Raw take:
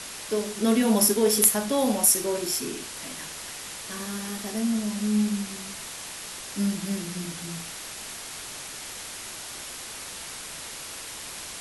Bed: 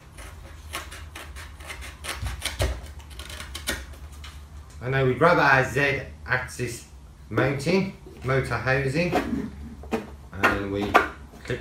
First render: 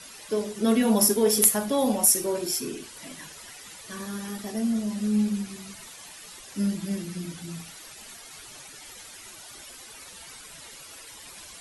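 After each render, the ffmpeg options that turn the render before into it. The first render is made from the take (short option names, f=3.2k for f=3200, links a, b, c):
-af "afftdn=nr=12:nf=-39"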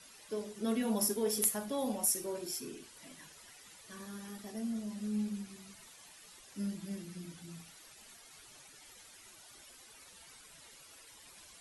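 -af "volume=-11.5dB"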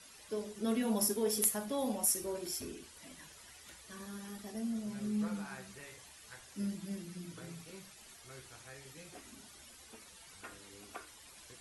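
-filter_complex "[1:a]volume=-30.5dB[a];[0:a][a]amix=inputs=2:normalize=0"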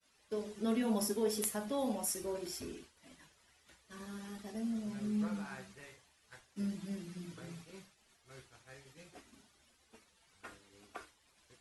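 -af "agate=range=-33dB:threshold=-47dB:ratio=3:detection=peak,highshelf=f=8.3k:g=-11"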